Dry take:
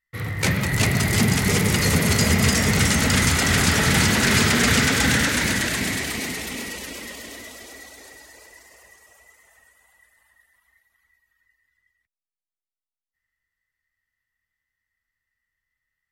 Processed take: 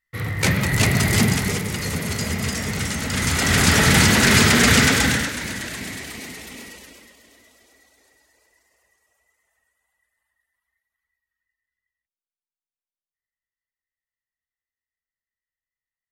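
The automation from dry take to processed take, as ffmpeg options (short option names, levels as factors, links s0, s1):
-af "volume=3.98,afade=t=out:st=1.18:d=0.45:silence=0.375837,afade=t=in:st=3.09:d=0.66:silence=0.316228,afade=t=out:st=4.87:d=0.46:silence=0.298538,afade=t=out:st=6.64:d=0.5:silence=0.398107"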